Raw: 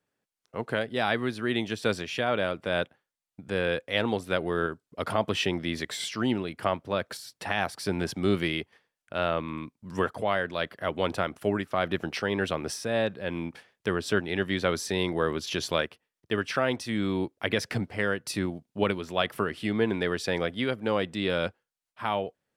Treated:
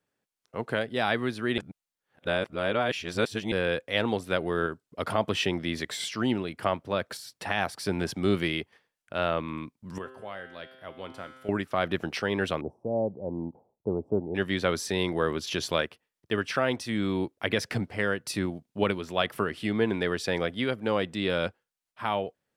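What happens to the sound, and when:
1.58–3.52 s: reverse
9.98–11.49 s: feedback comb 130 Hz, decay 1.5 s, mix 80%
12.61–14.35 s: elliptic low-pass 870 Hz, stop band 50 dB

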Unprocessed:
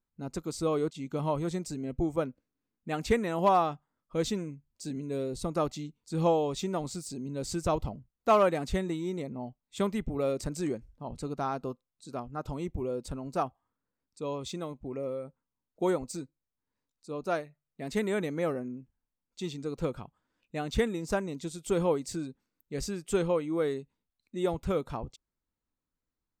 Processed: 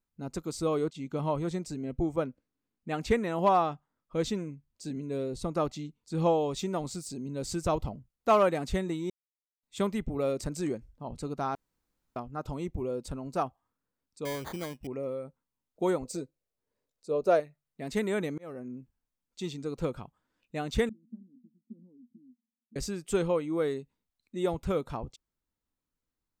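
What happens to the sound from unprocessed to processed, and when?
0.84–6.41 s: treble shelf 7.3 kHz -6.5 dB
9.10–9.63 s: mute
11.55–12.16 s: room tone
14.25–14.87 s: sample-rate reducer 2.7 kHz
16.05–17.40 s: high-order bell 500 Hz +9.5 dB 1 oct
18.38–18.78 s: fade in
20.89–22.76 s: Butterworth band-pass 230 Hz, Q 7.5

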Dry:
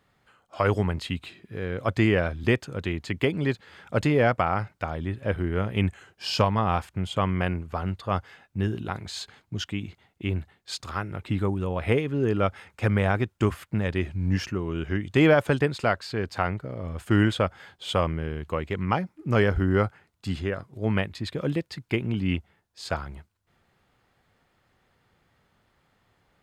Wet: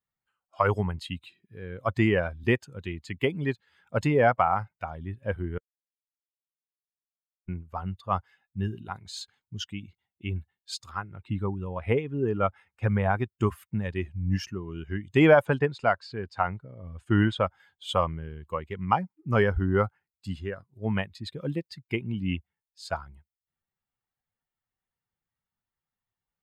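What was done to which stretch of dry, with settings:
5.58–7.48 s: mute
10.92–13.12 s: treble shelf 7.7 kHz -> 4.5 kHz -7.5 dB
15.45–17.41 s: distance through air 56 m
whole clip: expander on every frequency bin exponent 1.5; dynamic bell 890 Hz, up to +6 dB, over -40 dBFS, Q 1

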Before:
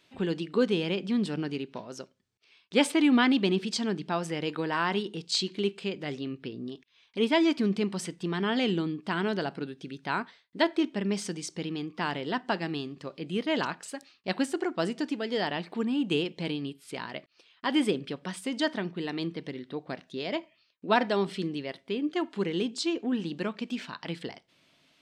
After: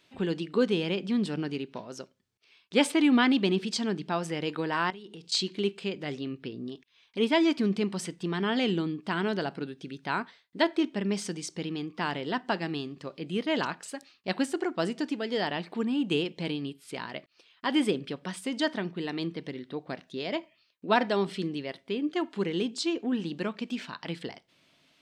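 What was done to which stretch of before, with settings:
4.90–5.32 s: compression 10:1, threshold -41 dBFS

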